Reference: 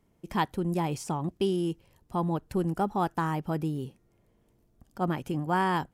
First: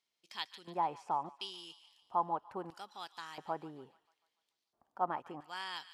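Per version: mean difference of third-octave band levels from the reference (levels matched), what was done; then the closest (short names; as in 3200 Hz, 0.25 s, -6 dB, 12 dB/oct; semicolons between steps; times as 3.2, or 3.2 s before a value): 9.0 dB: low shelf 450 Hz -5 dB; LFO band-pass square 0.74 Hz 900–4200 Hz; on a send: thin delay 0.145 s, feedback 52%, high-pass 1500 Hz, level -13.5 dB; on the sum: gain +3.5 dB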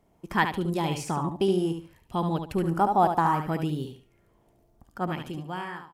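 4.5 dB: ending faded out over 1.19 s; on a send: feedback echo 72 ms, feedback 25%, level -7 dB; on the sum: LFO bell 0.65 Hz 670–3800 Hz +10 dB; gain +1 dB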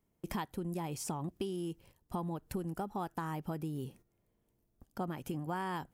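3.5 dB: gate -53 dBFS, range -12 dB; high shelf 11000 Hz +11.5 dB; compressor 10:1, threshold -36 dBFS, peak gain reduction 14.5 dB; gain +1.5 dB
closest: third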